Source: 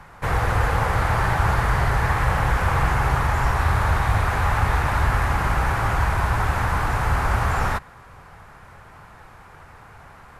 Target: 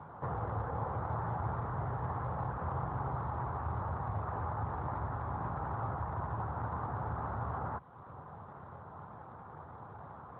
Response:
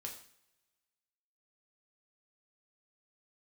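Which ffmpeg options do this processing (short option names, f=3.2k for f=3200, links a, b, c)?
-af "acompressor=threshold=-40dB:ratio=2,lowpass=f=1.2k:w=0.5412,lowpass=f=1.2k:w=1.3066" -ar 8000 -c:a libopencore_amrnb -b:a 12200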